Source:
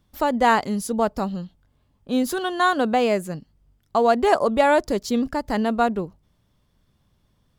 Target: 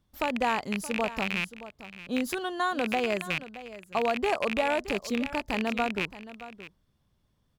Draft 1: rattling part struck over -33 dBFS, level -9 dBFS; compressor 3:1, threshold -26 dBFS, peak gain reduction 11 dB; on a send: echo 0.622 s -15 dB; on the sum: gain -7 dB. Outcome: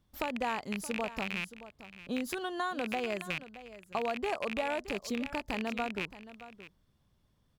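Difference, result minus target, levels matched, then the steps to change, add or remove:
compressor: peak gain reduction +6.5 dB
change: compressor 3:1, threshold -16 dBFS, peak gain reduction 4 dB

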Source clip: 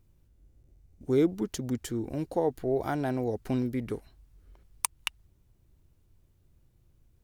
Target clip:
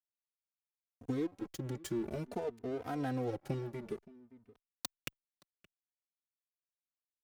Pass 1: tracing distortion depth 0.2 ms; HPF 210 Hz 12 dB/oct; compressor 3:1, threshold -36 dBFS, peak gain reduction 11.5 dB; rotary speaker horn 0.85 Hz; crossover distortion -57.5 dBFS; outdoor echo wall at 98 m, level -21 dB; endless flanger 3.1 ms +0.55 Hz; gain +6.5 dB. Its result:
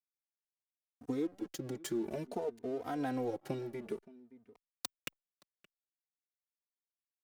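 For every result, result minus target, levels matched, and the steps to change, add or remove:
125 Hz band -6.0 dB; crossover distortion: distortion -6 dB
change: HPF 81 Hz 12 dB/oct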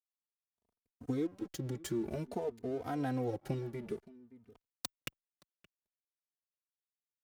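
crossover distortion: distortion -6 dB
change: crossover distortion -50.5 dBFS

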